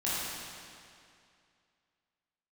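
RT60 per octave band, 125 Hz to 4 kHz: 2.4, 2.4, 2.4, 2.4, 2.3, 2.1 s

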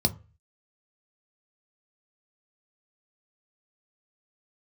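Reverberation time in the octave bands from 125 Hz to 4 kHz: 0.50, 0.30, 0.35, 0.35, 0.35, 0.20 s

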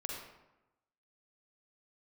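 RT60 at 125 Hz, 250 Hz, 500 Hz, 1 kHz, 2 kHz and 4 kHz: 1.0, 1.0, 0.95, 1.0, 0.80, 0.60 s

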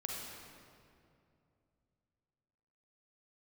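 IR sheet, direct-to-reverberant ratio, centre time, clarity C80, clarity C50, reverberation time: -2.0 dB, 0.118 s, 1.0 dB, -1.0 dB, 2.6 s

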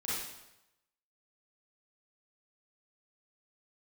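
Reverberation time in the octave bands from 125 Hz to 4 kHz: 1.0, 0.85, 0.90, 0.90, 0.85, 0.80 s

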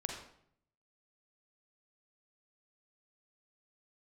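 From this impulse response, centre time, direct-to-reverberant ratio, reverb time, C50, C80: 37 ms, 1.0 dB, 0.65 s, 3.0 dB, 6.5 dB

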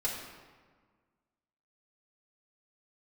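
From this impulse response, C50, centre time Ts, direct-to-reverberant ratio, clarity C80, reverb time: 3.0 dB, 59 ms, -6.5 dB, 4.5 dB, 1.6 s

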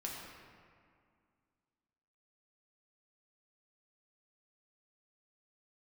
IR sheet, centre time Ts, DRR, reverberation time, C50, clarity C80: 99 ms, -3.5 dB, 2.1 s, 0.5 dB, 1.5 dB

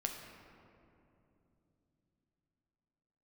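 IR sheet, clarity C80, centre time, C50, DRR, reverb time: 5.5 dB, 60 ms, 4.5 dB, 2.0 dB, 3.0 s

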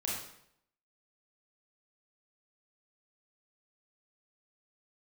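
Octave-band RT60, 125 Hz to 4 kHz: 0.75, 0.70, 0.75, 0.70, 0.65, 0.60 s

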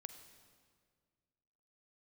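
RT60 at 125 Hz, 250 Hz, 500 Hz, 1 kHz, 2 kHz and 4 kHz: 2.2, 2.1, 2.0, 1.8, 1.6, 1.5 s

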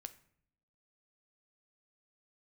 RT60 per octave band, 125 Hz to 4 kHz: 1.0, 1.0, 0.70, 0.60, 0.55, 0.45 s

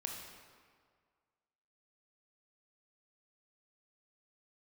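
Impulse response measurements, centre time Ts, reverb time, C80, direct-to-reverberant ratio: 66 ms, 1.9 s, 4.0 dB, 0.5 dB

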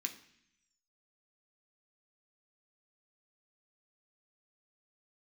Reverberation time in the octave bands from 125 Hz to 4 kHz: 1.0, 0.95, 0.65, 0.70, 0.95, 1.1 s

